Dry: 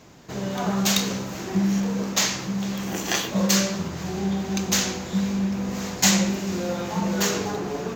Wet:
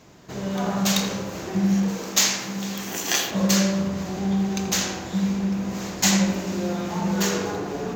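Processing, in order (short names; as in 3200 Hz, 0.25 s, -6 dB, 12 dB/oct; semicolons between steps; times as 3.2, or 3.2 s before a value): 1.88–3.31 tilt +2 dB/oct; on a send: darkening echo 82 ms, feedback 72%, low-pass 1700 Hz, level -5 dB; on the sum: gain -1.5 dB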